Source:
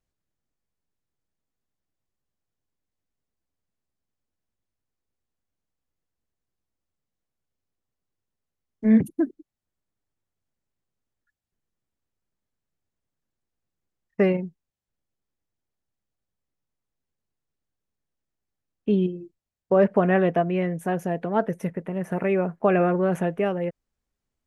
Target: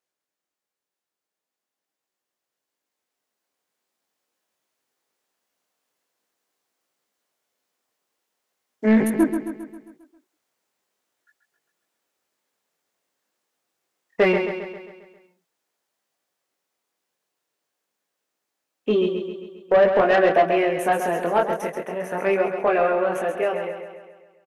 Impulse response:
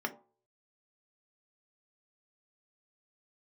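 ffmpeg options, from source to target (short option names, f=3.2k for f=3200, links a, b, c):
-filter_complex "[0:a]highpass=450,dynaudnorm=f=210:g=31:m=10.5dB,asplit=2[a][b];[b]alimiter=limit=-11dB:level=0:latency=1:release=212,volume=0dB[c];[a][c]amix=inputs=2:normalize=0,flanger=delay=18.5:depth=6.1:speed=0.44,asoftclip=type=tanh:threshold=-10dB,asplit=2[d][e];[e]aecho=0:1:134|268|402|536|670|804|938:0.422|0.228|0.123|0.0664|0.0359|0.0194|0.0105[f];[d][f]amix=inputs=2:normalize=0"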